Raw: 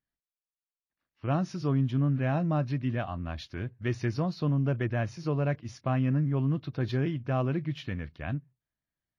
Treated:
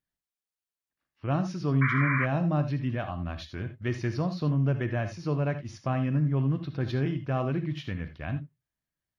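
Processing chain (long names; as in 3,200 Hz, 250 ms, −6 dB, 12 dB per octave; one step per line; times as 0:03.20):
reverb whose tail is shaped and stops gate 100 ms rising, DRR 9 dB
sound drawn into the spectrogram noise, 0:01.81–0:02.26, 1,000–2,400 Hz −29 dBFS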